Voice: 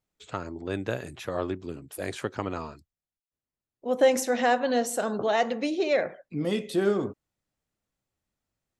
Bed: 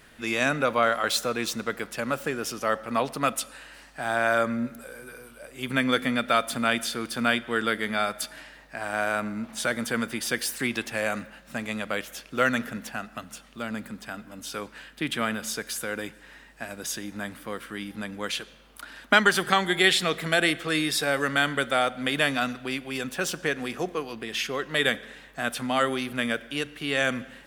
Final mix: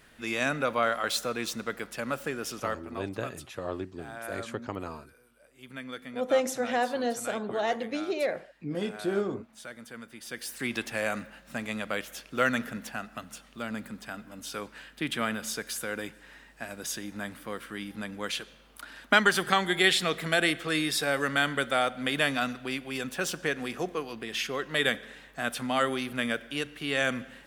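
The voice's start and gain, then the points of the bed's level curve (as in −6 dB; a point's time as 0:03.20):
2.30 s, −4.5 dB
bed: 0:02.57 −4 dB
0:03.05 −16.5 dB
0:10.10 −16.5 dB
0:10.76 −2.5 dB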